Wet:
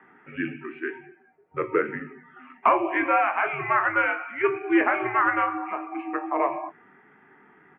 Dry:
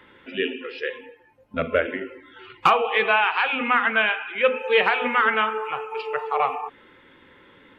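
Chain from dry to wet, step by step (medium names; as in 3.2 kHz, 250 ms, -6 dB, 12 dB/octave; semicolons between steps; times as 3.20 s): doubling 22 ms -9 dB; mistuned SSB -120 Hz 330–2300 Hz; trim -2 dB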